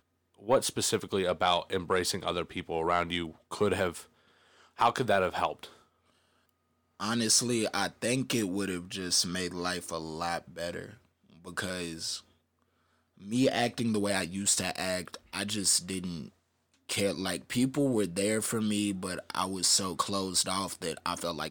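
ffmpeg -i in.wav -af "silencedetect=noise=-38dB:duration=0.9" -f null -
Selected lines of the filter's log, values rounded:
silence_start: 5.65
silence_end: 7.00 | silence_duration: 1.35
silence_start: 12.18
silence_end: 13.26 | silence_duration: 1.07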